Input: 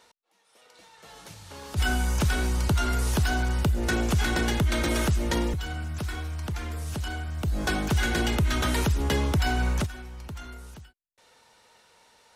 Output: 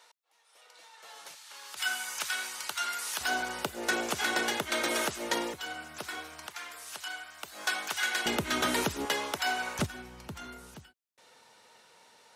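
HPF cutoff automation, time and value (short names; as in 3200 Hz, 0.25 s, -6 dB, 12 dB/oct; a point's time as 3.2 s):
640 Hz
from 1.35 s 1300 Hz
from 3.21 s 460 Hz
from 6.47 s 1000 Hz
from 8.26 s 270 Hz
from 9.05 s 610 Hz
from 9.79 s 140 Hz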